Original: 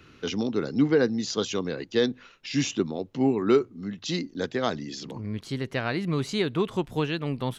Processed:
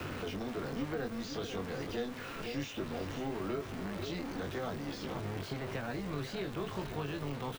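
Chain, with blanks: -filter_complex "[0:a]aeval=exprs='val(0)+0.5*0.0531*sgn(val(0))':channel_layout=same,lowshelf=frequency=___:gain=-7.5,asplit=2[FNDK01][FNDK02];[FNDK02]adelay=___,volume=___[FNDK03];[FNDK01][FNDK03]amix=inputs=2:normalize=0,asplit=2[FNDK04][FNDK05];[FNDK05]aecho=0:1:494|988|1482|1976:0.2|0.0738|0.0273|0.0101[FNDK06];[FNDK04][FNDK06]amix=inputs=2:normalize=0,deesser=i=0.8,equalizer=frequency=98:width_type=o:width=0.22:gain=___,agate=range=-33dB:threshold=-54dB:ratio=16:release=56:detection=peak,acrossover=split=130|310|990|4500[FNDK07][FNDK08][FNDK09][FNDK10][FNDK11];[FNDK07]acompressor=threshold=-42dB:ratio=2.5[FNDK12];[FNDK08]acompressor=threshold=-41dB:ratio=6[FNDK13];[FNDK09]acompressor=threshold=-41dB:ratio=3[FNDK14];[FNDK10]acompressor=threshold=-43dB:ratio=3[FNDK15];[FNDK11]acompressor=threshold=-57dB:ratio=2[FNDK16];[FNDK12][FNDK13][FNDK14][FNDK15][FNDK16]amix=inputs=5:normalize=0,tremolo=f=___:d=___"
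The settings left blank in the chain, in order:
340, 21, -5dB, 5, 250, 0.667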